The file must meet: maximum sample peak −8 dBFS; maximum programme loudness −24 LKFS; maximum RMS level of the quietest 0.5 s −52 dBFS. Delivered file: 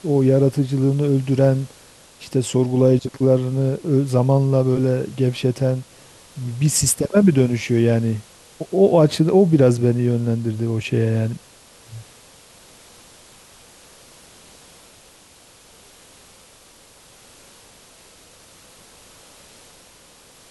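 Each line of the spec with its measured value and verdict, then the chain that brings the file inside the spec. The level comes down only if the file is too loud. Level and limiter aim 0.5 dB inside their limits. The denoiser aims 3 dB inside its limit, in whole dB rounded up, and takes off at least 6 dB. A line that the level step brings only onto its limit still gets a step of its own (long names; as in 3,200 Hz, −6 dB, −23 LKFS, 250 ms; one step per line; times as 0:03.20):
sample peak −3.5 dBFS: out of spec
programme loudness −18.5 LKFS: out of spec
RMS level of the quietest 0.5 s −49 dBFS: out of spec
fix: level −6 dB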